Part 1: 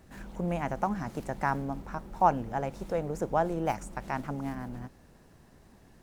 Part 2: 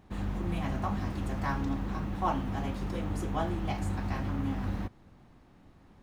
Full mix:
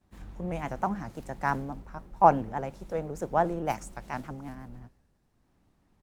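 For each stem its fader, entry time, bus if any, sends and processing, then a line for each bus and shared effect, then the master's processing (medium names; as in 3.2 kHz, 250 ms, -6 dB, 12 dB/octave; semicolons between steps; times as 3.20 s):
-1.5 dB, 0.00 s, no send, three bands expanded up and down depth 70%
-11.5 dB, 15 ms, no send, auto duck -17 dB, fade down 1.85 s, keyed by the first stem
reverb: none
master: vibrato with a chosen wave saw up 5.8 Hz, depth 100 cents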